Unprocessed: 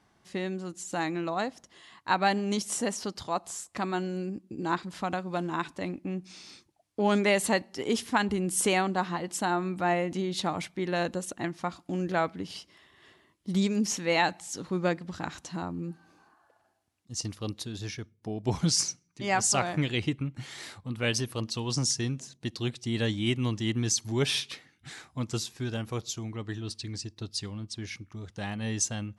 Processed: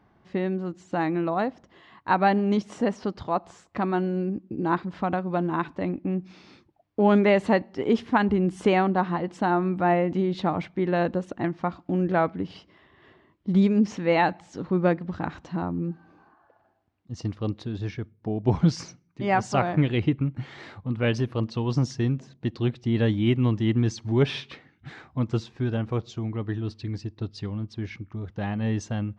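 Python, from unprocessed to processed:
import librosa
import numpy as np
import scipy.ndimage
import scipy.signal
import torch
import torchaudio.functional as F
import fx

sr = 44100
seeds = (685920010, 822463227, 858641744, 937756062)

y = fx.spacing_loss(x, sr, db_at_10k=36)
y = F.gain(torch.from_numpy(y), 7.5).numpy()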